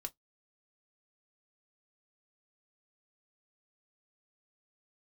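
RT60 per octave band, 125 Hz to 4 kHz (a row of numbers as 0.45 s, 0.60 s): 0.15 s, 0.15 s, 0.10 s, 0.10 s, 0.10 s, 0.10 s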